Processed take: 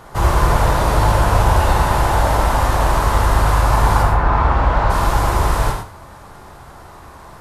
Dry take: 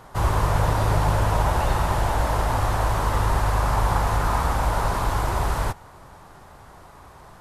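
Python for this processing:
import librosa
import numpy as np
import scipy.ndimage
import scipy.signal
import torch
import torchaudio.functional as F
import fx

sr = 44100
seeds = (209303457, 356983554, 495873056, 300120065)

y = fx.lowpass(x, sr, hz=fx.line((4.02, 2000.0), (4.89, 3300.0)), slope=12, at=(4.02, 4.89), fade=0.02)
y = y + 10.0 ** (-12.5 / 20.0) * np.pad(y, (int(84 * sr / 1000.0), 0))[:len(y)]
y = fx.rev_gated(y, sr, seeds[0], gate_ms=140, shape='flat', drr_db=2.5)
y = F.gain(torch.from_numpy(y), 5.0).numpy()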